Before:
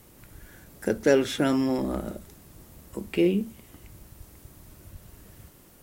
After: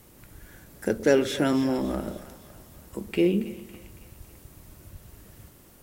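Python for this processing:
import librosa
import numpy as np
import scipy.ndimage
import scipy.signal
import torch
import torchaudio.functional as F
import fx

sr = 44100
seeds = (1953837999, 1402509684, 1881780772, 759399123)

y = fx.echo_split(x, sr, split_hz=560.0, low_ms=119, high_ms=278, feedback_pct=52, wet_db=-14.5)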